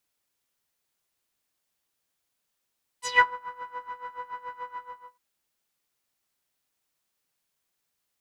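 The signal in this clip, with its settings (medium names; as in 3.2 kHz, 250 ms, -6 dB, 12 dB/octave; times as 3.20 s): synth patch with tremolo B5, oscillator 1 saw, interval -12 st, oscillator 2 level -12 dB, noise -8 dB, filter lowpass, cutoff 1.2 kHz, Q 4.7, filter envelope 3 oct, filter decay 0.20 s, filter sustain 5%, attack 189 ms, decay 0.10 s, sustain -20 dB, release 0.45 s, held 1.71 s, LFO 7 Hz, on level 17 dB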